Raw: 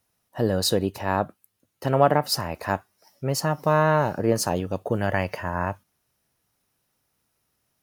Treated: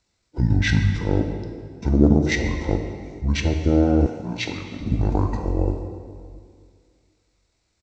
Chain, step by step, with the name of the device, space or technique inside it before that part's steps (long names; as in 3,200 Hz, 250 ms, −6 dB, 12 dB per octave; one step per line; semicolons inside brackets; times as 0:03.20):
monster voice (pitch shifter −11.5 semitones; formants moved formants −4 semitones; low-shelf EQ 120 Hz +5.5 dB; convolution reverb RT60 2.0 s, pre-delay 9 ms, DRR 4.5 dB)
0:04.06–0:04.81: high-pass filter 590 Hz 6 dB per octave
level +1 dB